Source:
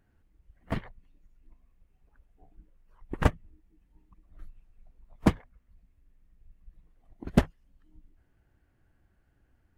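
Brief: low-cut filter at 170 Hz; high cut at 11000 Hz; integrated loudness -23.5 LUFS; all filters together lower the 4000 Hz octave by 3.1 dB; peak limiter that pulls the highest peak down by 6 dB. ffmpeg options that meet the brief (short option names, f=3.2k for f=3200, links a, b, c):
-af "highpass=170,lowpass=11k,equalizer=f=4k:t=o:g=-4.5,volume=13dB,alimiter=limit=-0.5dB:level=0:latency=1"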